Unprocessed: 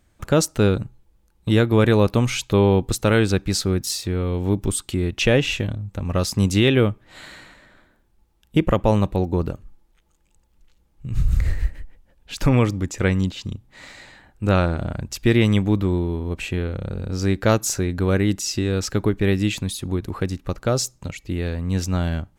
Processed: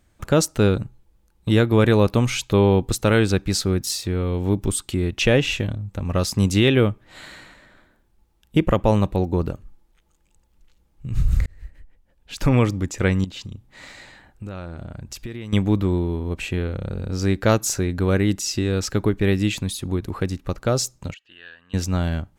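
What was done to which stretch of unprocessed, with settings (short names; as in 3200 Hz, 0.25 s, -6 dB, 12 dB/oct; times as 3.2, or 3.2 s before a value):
11.46–12.58 fade in
13.24–15.53 compressor, threshold -30 dBFS
21.14–21.74 double band-pass 2200 Hz, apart 0.77 oct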